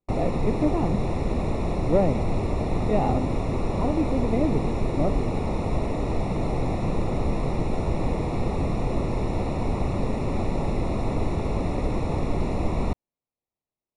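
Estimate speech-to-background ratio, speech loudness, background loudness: −0.5 dB, −28.0 LKFS, −27.5 LKFS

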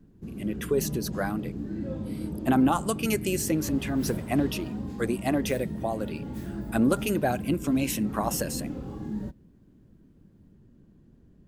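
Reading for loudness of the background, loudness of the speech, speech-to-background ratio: −35.5 LKFS, −28.5 LKFS, 7.0 dB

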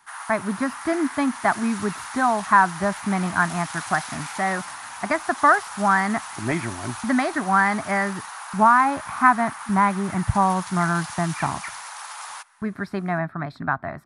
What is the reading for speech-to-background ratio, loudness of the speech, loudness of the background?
12.0 dB, −22.5 LKFS, −34.5 LKFS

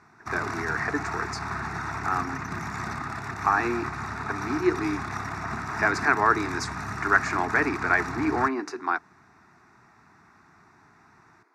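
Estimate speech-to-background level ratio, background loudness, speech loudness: 6.0 dB, −33.0 LKFS, −27.0 LKFS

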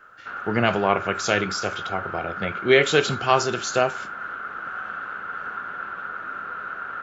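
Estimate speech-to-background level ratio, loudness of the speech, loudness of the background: 9.0 dB, −23.0 LKFS, −32.0 LKFS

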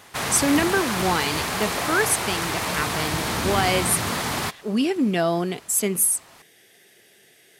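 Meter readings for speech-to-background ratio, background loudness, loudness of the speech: 1.5 dB, −25.0 LKFS, −23.5 LKFS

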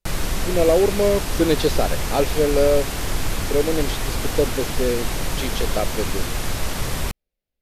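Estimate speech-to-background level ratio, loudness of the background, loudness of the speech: 4.0 dB, −26.5 LKFS, −22.5 LKFS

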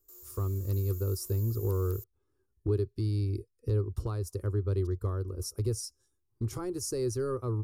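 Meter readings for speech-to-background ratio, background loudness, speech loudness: 13.5 dB, −46.5 LKFS, −33.0 LKFS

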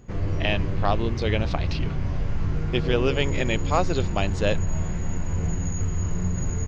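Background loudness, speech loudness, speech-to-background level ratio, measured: −28.5 LKFS, −27.5 LKFS, 1.0 dB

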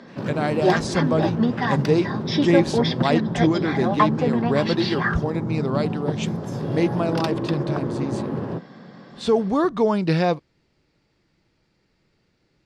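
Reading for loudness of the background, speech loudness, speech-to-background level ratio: −24.5 LKFS, −24.0 LKFS, 0.5 dB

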